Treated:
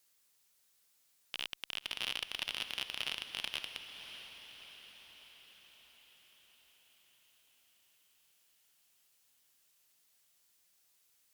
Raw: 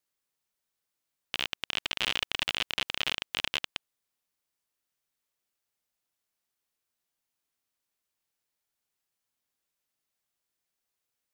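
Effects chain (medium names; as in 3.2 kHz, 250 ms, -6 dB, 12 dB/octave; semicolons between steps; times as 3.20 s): treble shelf 2.3 kHz +9.5 dB; peak limiter -22 dBFS, peak gain reduction 15.5 dB; one-sided clip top -32.5 dBFS, bottom -25 dBFS; echo that smears into a reverb 614 ms, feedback 59%, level -10 dB; trim +4.5 dB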